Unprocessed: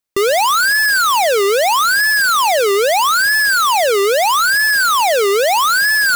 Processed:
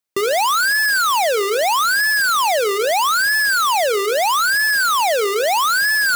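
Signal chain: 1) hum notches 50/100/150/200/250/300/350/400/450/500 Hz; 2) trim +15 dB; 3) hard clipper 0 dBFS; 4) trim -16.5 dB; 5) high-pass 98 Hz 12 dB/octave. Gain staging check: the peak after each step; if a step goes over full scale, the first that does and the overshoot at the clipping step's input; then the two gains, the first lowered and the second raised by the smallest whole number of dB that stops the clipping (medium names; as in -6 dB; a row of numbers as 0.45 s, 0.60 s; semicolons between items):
-7.0 dBFS, +8.0 dBFS, 0.0 dBFS, -16.5 dBFS, -11.5 dBFS; step 2, 8.0 dB; step 2 +7 dB, step 4 -8.5 dB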